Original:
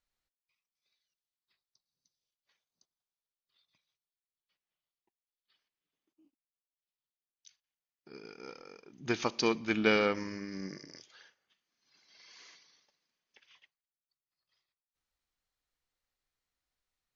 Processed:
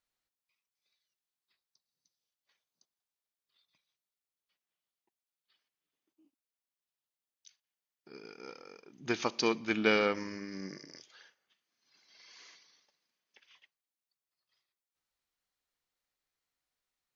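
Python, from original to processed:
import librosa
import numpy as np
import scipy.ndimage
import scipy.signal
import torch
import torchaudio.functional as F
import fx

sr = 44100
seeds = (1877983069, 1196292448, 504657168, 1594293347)

y = fx.low_shelf(x, sr, hz=86.0, db=-11.5)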